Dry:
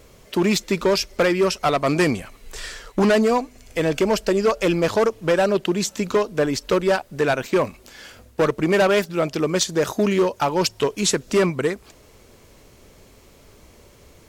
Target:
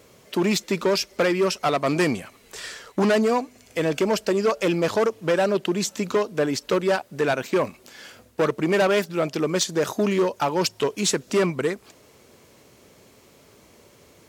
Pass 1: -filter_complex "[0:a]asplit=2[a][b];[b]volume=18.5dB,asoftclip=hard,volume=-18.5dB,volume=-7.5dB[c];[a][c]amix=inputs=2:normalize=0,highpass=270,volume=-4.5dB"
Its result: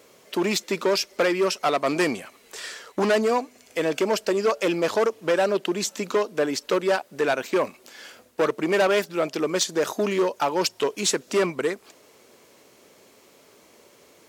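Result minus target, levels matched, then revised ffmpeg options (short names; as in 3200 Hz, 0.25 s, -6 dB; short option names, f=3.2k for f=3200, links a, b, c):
125 Hz band -6.5 dB
-filter_complex "[0:a]asplit=2[a][b];[b]volume=18.5dB,asoftclip=hard,volume=-18.5dB,volume=-7.5dB[c];[a][c]amix=inputs=2:normalize=0,highpass=120,volume=-4.5dB"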